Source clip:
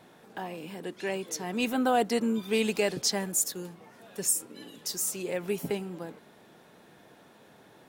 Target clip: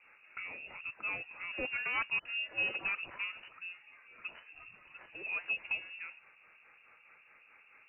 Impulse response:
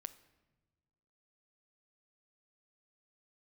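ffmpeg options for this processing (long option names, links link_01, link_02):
-filter_complex "[0:a]highpass=360,aeval=exprs='0.0631*(abs(mod(val(0)/0.0631+3,4)-2)-1)':channel_layout=same,acrossover=split=550[link_01][link_02];[link_01]aeval=exprs='val(0)*(1-0.7/2+0.7/2*cos(2*PI*4.7*n/s))':channel_layout=same[link_03];[link_02]aeval=exprs='val(0)*(1-0.7/2-0.7/2*cos(2*PI*4.7*n/s))':channel_layout=same[link_04];[link_03][link_04]amix=inputs=2:normalize=0,asettb=1/sr,asplit=3[link_05][link_06][link_07];[link_05]atrim=end=2.194[link_08];[link_06]atrim=start=2.19:end=4.6,asetpts=PTS-STARTPTS,afade=type=in:duration=0.004:curve=qsin,afade=type=out:start_time=2.406:duration=0.004:curve=qsin,acrossover=split=2100[link_09][link_10];[link_09]adelay=60[link_11];[link_11][link_10]amix=inputs=2:normalize=0,atrim=end_sample=106281[link_12];[link_07]atrim=start=4.596[link_13];[link_08][link_12]acrossfade=duration=0.004:curve1=hsin:curve2=qsin[link_14];[link_14][link_13]acrossfade=duration=0.004:curve1=qsin:curve2=hsin,lowpass=frequency=2600:width_type=q:width=0.5098,lowpass=frequency=2600:width_type=q:width=0.6013,lowpass=frequency=2600:width_type=q:width=0.9,lowpass=frequency=2600:width_type=q:width=2.563,afreqshift=-3000"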